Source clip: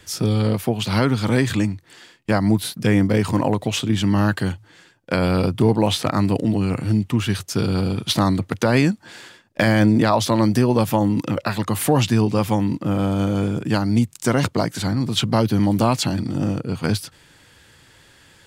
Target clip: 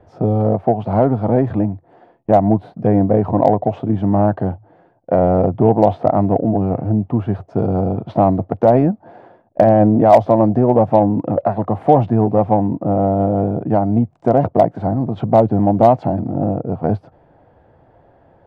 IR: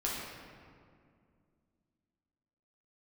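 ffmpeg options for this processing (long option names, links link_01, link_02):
-af "lowpass=frequency=700:width_type=q:width=4.9,aeval=exprs='0.75*(cos(1*acos(clip(val(0)/0.75,-1,1)))-cos(1*PI/2))+0.0119*(cos(5*acos(clip(val(0)/0.75,-1,1)))-cos(5*PI/2))':channel_layout=same,volume=1dB"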